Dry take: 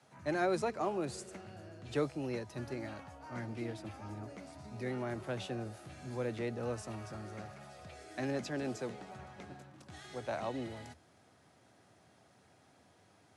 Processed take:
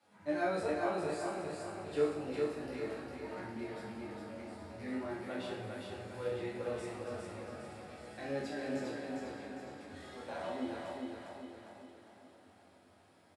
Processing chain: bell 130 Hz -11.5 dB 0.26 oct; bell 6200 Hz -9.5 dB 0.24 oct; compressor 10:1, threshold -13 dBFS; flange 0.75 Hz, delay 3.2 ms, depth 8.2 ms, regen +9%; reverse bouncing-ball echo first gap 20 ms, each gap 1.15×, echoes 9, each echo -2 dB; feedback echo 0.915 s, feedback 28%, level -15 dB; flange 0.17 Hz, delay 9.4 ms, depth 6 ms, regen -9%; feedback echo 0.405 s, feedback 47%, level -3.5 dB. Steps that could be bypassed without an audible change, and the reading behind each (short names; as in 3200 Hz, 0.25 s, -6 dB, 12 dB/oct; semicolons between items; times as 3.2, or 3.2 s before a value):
compressor, threshold -13 dBFS: input peak -21.0 dBFS